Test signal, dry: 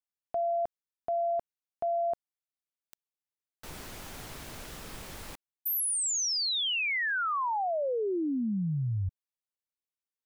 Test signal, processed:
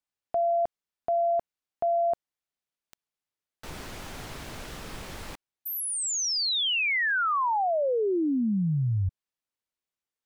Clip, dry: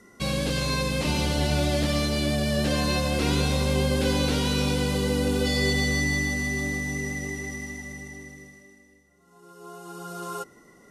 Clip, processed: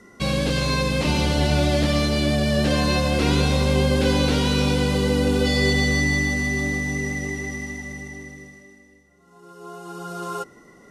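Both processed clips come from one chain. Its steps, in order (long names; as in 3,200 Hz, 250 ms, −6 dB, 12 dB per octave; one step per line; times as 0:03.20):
high-shelf EQ 8,500 Hz −9.5 dB
level +4.5 dB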